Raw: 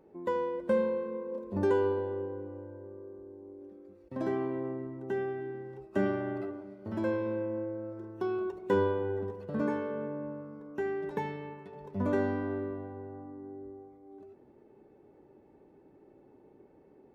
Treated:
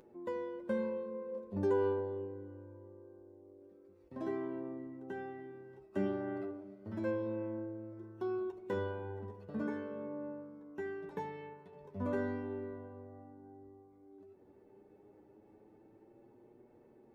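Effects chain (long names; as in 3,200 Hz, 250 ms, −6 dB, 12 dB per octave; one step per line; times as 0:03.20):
upward compression, threshold −47 dBFS
flanger 0.12 Hz, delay 8.2 ms, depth 4.3 ms, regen +29%
level −3.5 dB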